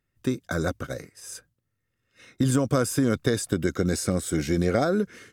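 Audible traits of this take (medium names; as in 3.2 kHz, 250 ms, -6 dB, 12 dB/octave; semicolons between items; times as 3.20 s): noise floor -79 dBFS; spectral tilt -5.5 dB/octave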